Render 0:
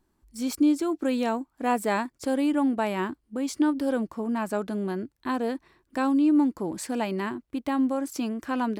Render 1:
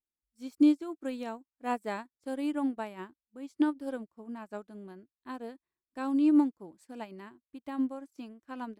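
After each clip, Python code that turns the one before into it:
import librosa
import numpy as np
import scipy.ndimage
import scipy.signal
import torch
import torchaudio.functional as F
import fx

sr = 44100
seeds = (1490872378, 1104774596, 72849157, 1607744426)

y = fx.upward_expand(x, sr, threshold_db=-40.0, expansion=2.5)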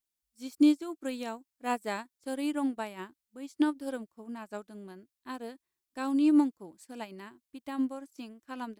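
y = fx.high_shelf(x, sr, hz=2800.0, db=9.0)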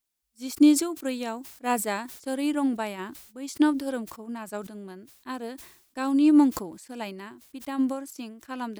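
y = fx.sustainer(x, sr, db_per_s=80.0)
y = y * librosa.db_to_amplitude(5.0)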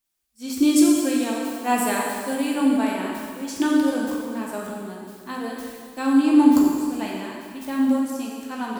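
y = fx.rev_plate(x, sr, seeds[0], rt60_s=2.0, hf_ratio=0.95, predelay_ms=0, drr_db=-3.0)
y = y * librosa.db_to_amplitude(1.0)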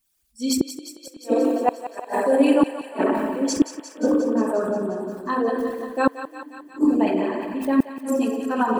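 y = fx.envelope_sharpen(x, sr, power=2.0)
y = fx.gate_flip(y, sr, shuts_db=-14.0, range_db=-37)
y = fx.echo_thinned(y, sr, ms=177, feedback_pct=74, hz=610.0, wet_db=-10.5)
y = y * librosa.db_to_amplitude(8.0)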